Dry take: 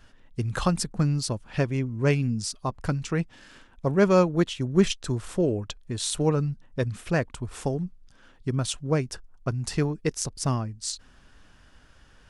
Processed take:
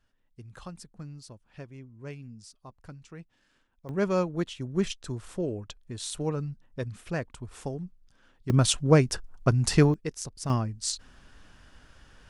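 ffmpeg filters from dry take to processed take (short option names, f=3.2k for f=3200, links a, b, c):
-af "asetnsamples=n=441:p=0,asendcmd='3.89 volume volume -7dB;8.5 volume volume 5.5dB;9.94 volume volume -7dB;10.5 volume volume 1dB',volume=-18.5dB"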